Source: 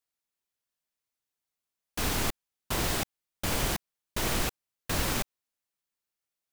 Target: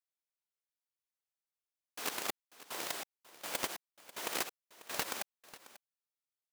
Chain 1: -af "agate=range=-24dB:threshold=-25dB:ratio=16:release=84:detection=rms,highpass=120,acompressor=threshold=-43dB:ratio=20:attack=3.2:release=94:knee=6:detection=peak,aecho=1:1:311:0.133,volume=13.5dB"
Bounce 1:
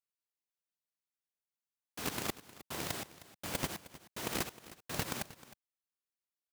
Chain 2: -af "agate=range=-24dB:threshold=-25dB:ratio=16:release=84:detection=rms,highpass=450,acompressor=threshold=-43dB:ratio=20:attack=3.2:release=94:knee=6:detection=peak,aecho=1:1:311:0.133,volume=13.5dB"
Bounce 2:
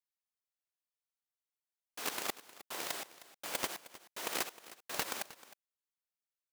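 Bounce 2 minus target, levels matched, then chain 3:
echo 0.231 s early
-af "agate=range=-24dB:threshold=-25dB:ratio=16:release=84:detection=rms,highpass=450,acompressor=threshold=-43dB:ratio=20:attack=3.2:release=94:knee=6:detection=peak,aecho=1:1:542:0.133,volume=13.5dB"

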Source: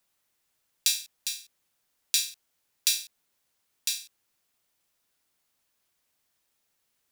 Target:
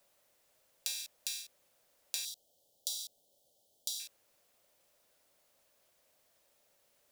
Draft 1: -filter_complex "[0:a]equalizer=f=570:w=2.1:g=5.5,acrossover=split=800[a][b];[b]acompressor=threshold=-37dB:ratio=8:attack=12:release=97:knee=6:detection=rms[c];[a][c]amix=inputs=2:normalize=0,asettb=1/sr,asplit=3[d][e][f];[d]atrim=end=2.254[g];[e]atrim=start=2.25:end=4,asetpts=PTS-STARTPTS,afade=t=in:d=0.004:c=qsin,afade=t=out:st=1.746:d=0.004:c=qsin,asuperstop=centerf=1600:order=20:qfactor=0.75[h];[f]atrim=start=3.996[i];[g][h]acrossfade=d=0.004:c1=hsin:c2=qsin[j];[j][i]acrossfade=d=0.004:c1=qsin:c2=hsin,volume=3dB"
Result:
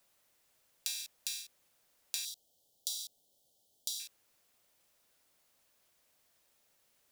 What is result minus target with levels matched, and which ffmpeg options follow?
500 Hz band -6.5 dB
-filter_complex "[0:a]equalizer=f=570:w=2.1:g=13.5,acrossover=split=800[a][b];[b]acompressor=threshold=-37dB:ratio=8:attack=12:release=97:knee=6:detection=rms[c];[a][c]amix=inputs=2:normalize=0,asettb=1/sr,asplit=3[d][e][f];[d]atrim=end=2.254[g];[e]atrim=start=2.25:end=4,asetpts=PTS-STARTPTS,afade=t=in:d=0.004:c=qsin,afade=t=out:st=1.746:d=0.004:c=qsin,asuperstop=centerf=1600:order=20:qfactor=0.75[h];[f]atrim=start=3.996[i];[g][h]acrossfade=d=0.004:c1=hsin:c2=qsin[j];[j][i]acrossfade=d=0.004:c1=qsin:c2=hsin,volume=3dB"

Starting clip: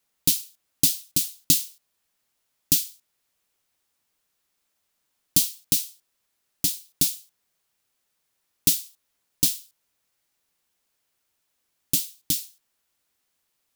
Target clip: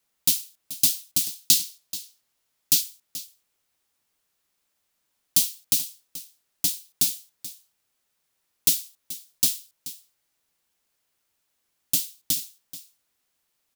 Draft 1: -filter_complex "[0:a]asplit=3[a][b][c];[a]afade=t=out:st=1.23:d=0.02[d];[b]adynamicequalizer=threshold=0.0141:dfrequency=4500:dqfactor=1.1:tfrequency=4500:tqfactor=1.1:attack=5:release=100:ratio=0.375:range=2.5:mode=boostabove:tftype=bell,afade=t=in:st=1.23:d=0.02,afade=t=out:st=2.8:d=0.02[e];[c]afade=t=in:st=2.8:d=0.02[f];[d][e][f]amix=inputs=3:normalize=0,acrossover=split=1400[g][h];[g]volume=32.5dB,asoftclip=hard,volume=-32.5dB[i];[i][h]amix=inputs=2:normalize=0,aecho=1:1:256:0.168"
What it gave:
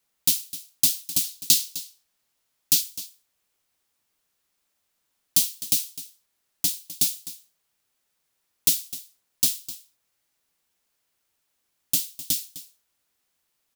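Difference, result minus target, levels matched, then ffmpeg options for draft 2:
echo 0.176 s early
-filter_complex "[0:a]asplit=3[a][b][c];[a]afade=t=out:st=1.23:d=0.02[d];[b]adynamicequalizer=threshold=0.0141:dfrequency=4500:dqfactor=1.1:tfrequency=4500:tqfactor=1.1:attack=5:release=100:ratio=0.375:range=2.5:mode=boostabove:tftype=bell,afade=t=in:st=1.23:d=0.02,afade=t=out:st=2.8:d=0.02[e];[c]afade=t=in:st=2.8:d=0.02[f];[d][e][f]amix=inputs=3:normalize=0,acrossover=split=1400[g][h];[g]volume=32.5dB,asoftclip=hard,volume=-32.5dB[i];[i][h]amix=inputs=2:normalize=0,aecho=1:1:432:0.168"

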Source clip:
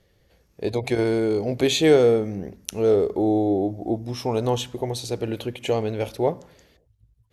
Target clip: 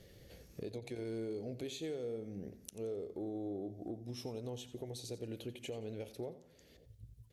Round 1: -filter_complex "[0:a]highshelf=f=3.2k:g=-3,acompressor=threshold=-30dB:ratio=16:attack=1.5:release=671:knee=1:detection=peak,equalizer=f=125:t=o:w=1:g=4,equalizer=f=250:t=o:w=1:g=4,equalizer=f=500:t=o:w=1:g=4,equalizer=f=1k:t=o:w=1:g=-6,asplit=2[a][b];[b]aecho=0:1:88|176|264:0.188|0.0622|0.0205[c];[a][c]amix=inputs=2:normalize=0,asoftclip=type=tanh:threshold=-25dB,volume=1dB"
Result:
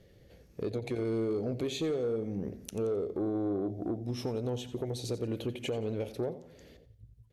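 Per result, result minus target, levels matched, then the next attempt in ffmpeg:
compressor: peak gain reduction -10.5 dB; 8000 Hz band -5.0 dB
-filter_complex "[0:a]highshelf=f=3.2k:g=-3,acompressor=threshold=-41dB:ratio=16:attack=1.5:release=671:knee=1:detection=peak,equalizer=f=125:t=o:w=1:g=4,equalizer=f=250:t=o:w=1:g=4,equalizer=f=500:t=o:w=1:g=4,equalizer=f=1k:t=o:w=1:g=-6,asplit=2[a][b];[b]aecho=0:1:88|176|264:0.188|0.0622|0.0205[c];[a][c]amix=inputs=2:normalize=0,asoftclip=type=tanh:threshold=-25dB,volume=1dB"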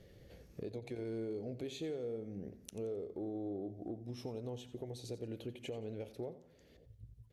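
8000 Hz band -4.5 dB
-filter_complex "[0:a]highshelf=f=3.2k:g=6,acompressor=threshold=-41dB:ratio=16:attack=1.5:release=671:knee=1:detection=peak,equalizer=f=125:t=o:w=1:g=4,equalizer=f=250:t=o:w=1:g=4,equalizer=f=500:t=o:w=1:g=4,equalizer=f=1k:t=o:w=1:g=-6,asplit=2[a][b];[b]aecho=0:1:88|176|264:0.188|0.0622|0.0205[c];[a][c]amix=inputs=2:normalize=0,asoftclip=type=tanh:threshold=-25dB,volume=1dB"

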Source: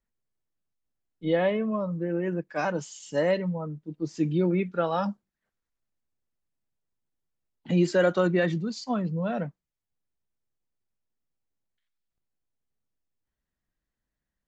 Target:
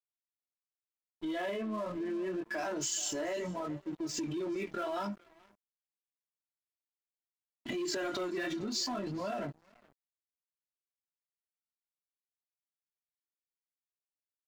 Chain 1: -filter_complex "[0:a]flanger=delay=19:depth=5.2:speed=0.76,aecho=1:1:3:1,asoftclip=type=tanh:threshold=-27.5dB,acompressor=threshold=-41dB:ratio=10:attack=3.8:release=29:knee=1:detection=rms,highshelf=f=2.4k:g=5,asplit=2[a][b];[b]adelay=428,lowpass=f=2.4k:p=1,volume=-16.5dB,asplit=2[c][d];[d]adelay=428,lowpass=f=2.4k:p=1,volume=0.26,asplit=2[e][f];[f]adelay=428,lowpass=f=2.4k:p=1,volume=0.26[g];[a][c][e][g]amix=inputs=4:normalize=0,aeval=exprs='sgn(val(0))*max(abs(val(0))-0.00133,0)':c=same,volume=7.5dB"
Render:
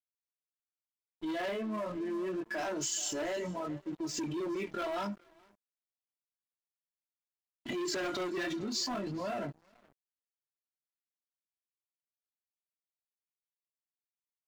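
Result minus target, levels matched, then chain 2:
soft clip: distortion +7 dB
-filter_complex "[0:a]flanger=delay=19:depth=5.2:speed=0.76,aecho=1:1:3:1,asoftclip=type=tanh:threshold=-20.5dB,acompressor=threshold=-41dB:ratio=10:attack=3.8:release=29:knee=1:detection=rms,highshelf=f=2.4k:g=5,asplit=2[a][b];[b]adelay=428,lowpass=f=2.4k:p=1,volume=-16.5dB,asplit=2[c][d];[d]adelay=428,lowpass=f=2.4k:p=1,volume=0.26,asplit=2[e][f];[f]adelay=428,lowpass=f=2.4k:p=1,volume=0.26[g];[a][c][e][g]amix=inputs=4:normalize=0,aeval=exprs='sgn(val(0))*max(abs(val(0))-0.00133,0)':c=same,volume=7.5dB"

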